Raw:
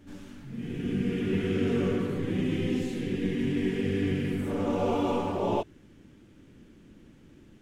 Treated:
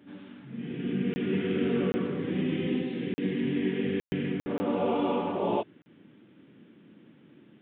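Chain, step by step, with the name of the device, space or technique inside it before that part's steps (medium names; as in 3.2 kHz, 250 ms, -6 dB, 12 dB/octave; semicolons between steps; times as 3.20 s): call with lost packets (high-pass 140 Hz 24 dB/octave; resampled via 8 kHz; lost packets of 20 ms bursts)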